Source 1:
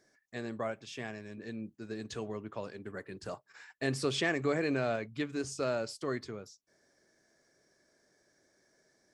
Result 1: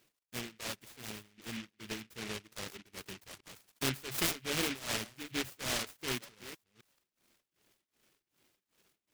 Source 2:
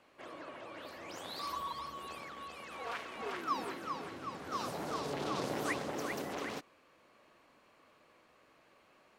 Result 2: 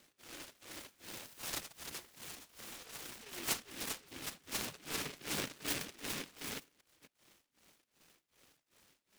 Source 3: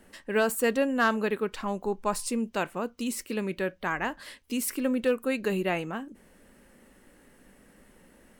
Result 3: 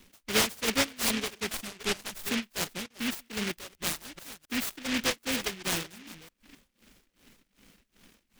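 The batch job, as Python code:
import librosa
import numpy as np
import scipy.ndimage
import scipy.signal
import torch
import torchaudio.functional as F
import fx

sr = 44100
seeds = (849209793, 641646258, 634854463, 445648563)

y = fx.reverse_delay(x, sr, ms=262, wet_db=-11)
y = y * (1.0 - 0.77 / 2.0 + 0.77 / 2.0 * np.cos(2.0 * np.pi * 2.6 * (np.arange(len(y)) / sr)))
y = fx.dereverb_blind(y, sr, rt60_s=0.76)
y = fx.noise_mod_delay(y, sr, seeds[0], noise_hz=2300.0, depth_ms=0.41)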